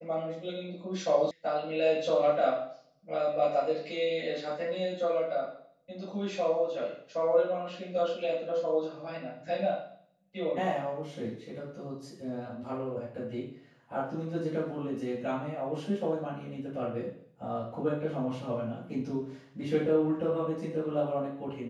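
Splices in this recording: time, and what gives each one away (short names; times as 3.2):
1.31 sound cut off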